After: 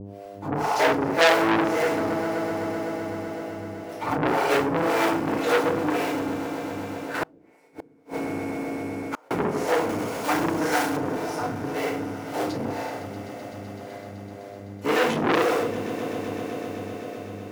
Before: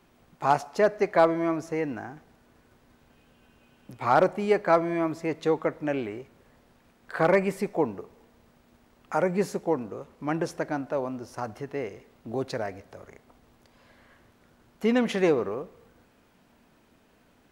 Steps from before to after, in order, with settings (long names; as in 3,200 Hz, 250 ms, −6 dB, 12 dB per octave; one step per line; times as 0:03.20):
sub-harmonics by changed cycles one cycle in 3, muted
low-shelf EQ 80 Hz −11.5 dB
feedback delay network reverb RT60 1.1 s, low-frequency decay 1×, high-frequency decay 0.95×, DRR −10 dB
hum with harmonics 100 Hz, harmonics 7, −36 dBFS −1 dB per octave
two-band tremolo in antiphase 1.9 Hz, depth 100%, crossover 420 Hz
echo that builds up and dies away 127 ms, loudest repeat 5, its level −17 dB
0:07.23–0:09.31: gate with flip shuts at −16 dBFS, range −36 dB
0:09.89–0:10.97: high-shelf EQ 2,600 Hz +8.5 dB
saturating transformer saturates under 3,200 Hz
level +2 dB